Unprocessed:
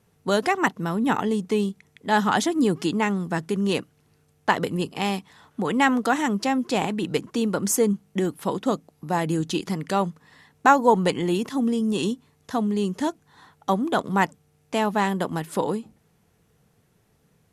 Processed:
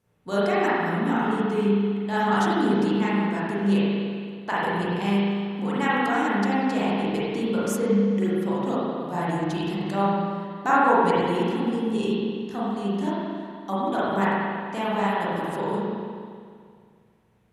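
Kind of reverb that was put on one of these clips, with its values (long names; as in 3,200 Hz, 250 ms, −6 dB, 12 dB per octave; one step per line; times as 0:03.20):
spring reverb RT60 2.1 s, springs 35/45 ms, chirp 60 ms, DRR −9.5 dB
level −10.5 dB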